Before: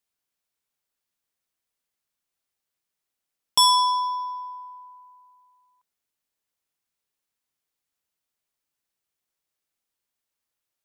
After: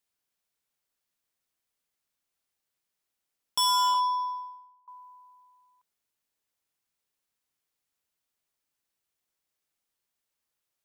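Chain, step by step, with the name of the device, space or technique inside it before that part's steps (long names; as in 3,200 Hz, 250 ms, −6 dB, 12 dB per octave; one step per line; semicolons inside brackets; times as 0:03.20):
limiter into clipper (brickwall limiter −18 dBFS, peak gain reduction 7 dB; hard clipping −22 dBFS, distortion −15 dB)
0:03.94–0:04.88: downward expander −31 dBFS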